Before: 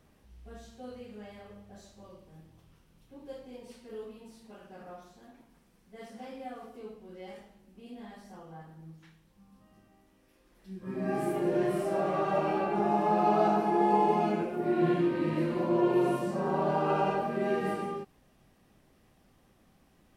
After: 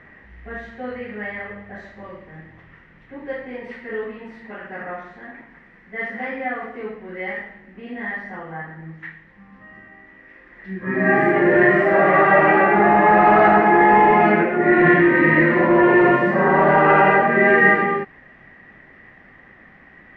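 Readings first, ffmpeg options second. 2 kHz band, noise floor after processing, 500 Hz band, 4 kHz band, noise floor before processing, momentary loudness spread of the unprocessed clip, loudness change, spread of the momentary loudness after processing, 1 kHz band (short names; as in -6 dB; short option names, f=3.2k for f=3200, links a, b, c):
+26.0 dB, -49 dBFS, +12.5 dB, n/a, -65 dBFS, 21 LU, +14.0 dB, 20 LU, +14.0 dB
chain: -af "apsyclip=22.5dB,lowpass=f=1.9k:t=q:w=11,lowshelf=f=110:g=-6.5,volume=-9dB"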